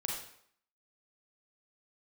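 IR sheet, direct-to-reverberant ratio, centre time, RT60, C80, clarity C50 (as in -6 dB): -1.5 dB, 45 ms, 0.65 s, 6.0 dB, 2.0 dB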